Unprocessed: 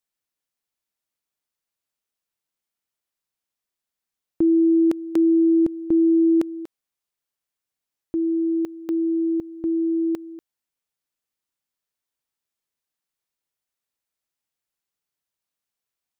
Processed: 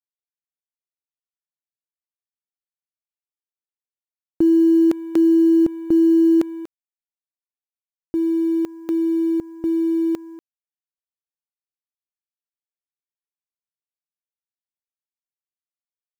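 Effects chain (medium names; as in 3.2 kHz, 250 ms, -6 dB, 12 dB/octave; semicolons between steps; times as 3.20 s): companding laws mixed up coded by A; level rider gain up to 3 dB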